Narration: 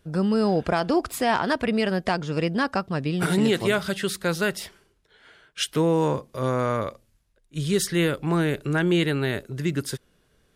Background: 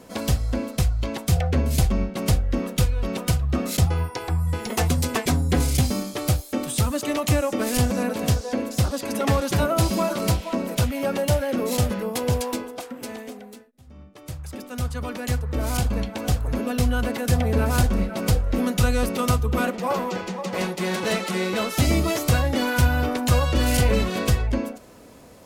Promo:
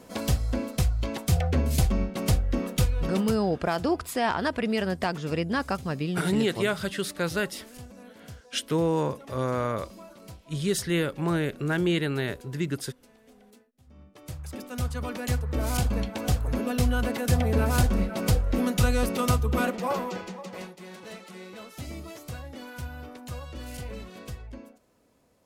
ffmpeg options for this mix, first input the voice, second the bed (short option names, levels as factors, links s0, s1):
-filter_complex "[0:a]adelay=2950,volume=0.668[s0];[1:a]volume=7.94,afade=t=out:st=3.16:d=0.22:silence=0.0944061,afade=t=in:st=13.2:d=1.32:silence=0.0891251,afade=t=out:st=19.75:d=1.01:silence=0.158489[s1];[s0][s1]amix=inputs=2:normalize=0"